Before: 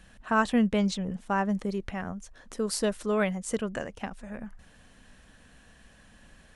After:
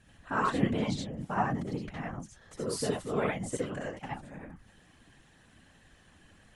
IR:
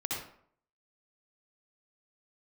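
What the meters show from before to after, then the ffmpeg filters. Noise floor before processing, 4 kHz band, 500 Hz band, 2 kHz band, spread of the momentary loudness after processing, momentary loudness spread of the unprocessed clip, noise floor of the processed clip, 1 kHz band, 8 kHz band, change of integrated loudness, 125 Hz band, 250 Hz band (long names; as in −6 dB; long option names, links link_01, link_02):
−57 dBFS, −4.0 dB, −4.0 dB, −4.5 dB, 14 LU, 17 LU, −61 dBFS, −2.0 dB, −4.5 dB, −4.0 dB, 0.0 dB, −5.5 dB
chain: -filter_complex "[1:a]atrim=start_sample=2205,atrim=end_sample=4410[link_01];[0:a][link_01]afir=irnorm=-1:irlink=0,afftfilt=real='hypot(re,im)*cos(2*PI*random(0))':imag='hypot(re,im)*sin(2*PI*random(1))':win_size=512:overlap=0.75"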